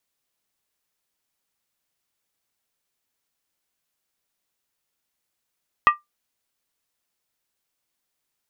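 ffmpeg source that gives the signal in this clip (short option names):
-f lavfi -i "aevalsrc='0.447*pow(10,-3*t/0.16)*sin(2*PI*1190*t)+0.2*pow(10,-3*t/0.127)*sin(2*PI*1896.9*t)+0.0891*pow(10,-3*t/0.109)*sin(2*PI*2541.8*t)+0.0398*pow(10,-3*t/0.106)*sin(2*PI*2732.2*t)+0.0178*pow(10,-3*t/0.098)*sin(2*PI*3157.1*t)':d=0.63:s=44100"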